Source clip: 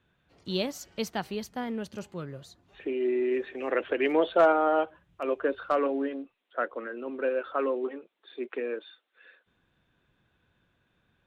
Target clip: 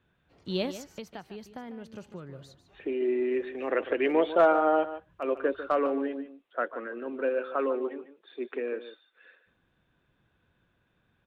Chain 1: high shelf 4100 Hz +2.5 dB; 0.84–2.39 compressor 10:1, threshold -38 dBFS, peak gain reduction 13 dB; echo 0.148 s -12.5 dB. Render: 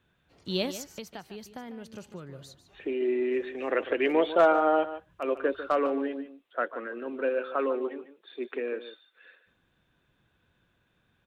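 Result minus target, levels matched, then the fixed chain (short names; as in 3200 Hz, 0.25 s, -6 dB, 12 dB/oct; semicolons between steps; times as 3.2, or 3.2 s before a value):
8000 Hz band +6.5 dB
high shelf 4100 Hz -7 dB; 0.84–2.39 compressor 10:1, threshold -38 dBFS, peak gain reduction 12.5 dB; echo 0.148 s -12.5 dB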